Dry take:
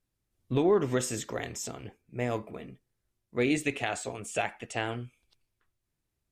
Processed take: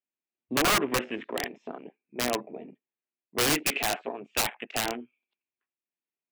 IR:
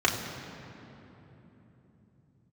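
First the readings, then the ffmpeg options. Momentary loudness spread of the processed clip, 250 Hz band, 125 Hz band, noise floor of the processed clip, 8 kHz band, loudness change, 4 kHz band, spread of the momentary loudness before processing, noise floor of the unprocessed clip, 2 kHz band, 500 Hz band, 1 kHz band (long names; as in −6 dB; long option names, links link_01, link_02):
19 LU, −2.0 dB, −6.0 dB, below −85 dBFS, +6.5 dB, +3.0 dB, +11.0 dB, 18 LU, −83 dBFS, +5.0 dB, −2.5 dB, +5.0 dB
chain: -af "highpass=frequency=240:width=0.5412,highpass=frequency=240:width=1.3066,equalizer=frequency=310:width_type=q:width=4:gain=-4,equalizer=frequency=500:width_type=q:width=4:gain=-6,equalizer=frequency=1300:width_type=q:width=4:gain=-5,equalizer=frequency=2500:width_type=q:width=4:gain=6,lowpass=frequency=3100:width=0.5412,lowpass=frequency=3100:width=1.3066,afwtdn=0.00708,aeval=exprs='(mod(15.8*val(0)+1,2)-1)/15.8':channel_layout=same,volume=6dB"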